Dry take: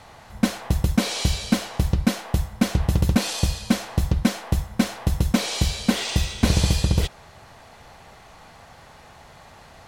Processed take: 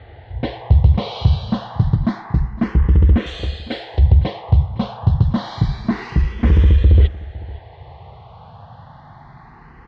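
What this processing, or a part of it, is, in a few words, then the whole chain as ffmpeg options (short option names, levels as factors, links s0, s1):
barber-pole phaser into a guitar amplifier: -filter_complex "[0:a]asettb=1/sr,asplit=3[s0][s1][s2];[s0]atrim=end=3.264[s3];[s1]atrim=start=3.26:end=3.99,asetpts=PTS-STARTPTS,afade=t=in:d=0.004:c=qsin,afade=t=out:st=0.726:d=0.004:c=qsin,bass=f=250:g=-13,treble=f=4000:g=15[s4];[s2]atrim=start=3.986[s5];[s3][s4]acrossfade=d=0.004:c1=hsin:c2=qsin[s6];[s6][s5]acrossfade=d=0.004:c1=qsin:c2=hsin,asplit=2[s7][s8];[s8]afreqshift=0.28[s9];[s7][s9]amix=inputs=2:normalize=1,asoftclip=type=tanh:threshold=0.126,highpass=83,equalizer=f=190:t=q:w=4:g=-7,equalizer=f=270:t=q:w=4:g=-6,equalizer=f=590:t=q:w=4:g=-5,equalizer=f=1400:t=q:w=4:g=-6,equalizer=f=2500:t=q:w=4:g=-9,lowpass=f=3500:w=0.5412,lowpass=f=3500:w=1.3066,aemphasis=mode=reproduction:type=bsi,aecho=1:1:507:0.1,volume=2.51"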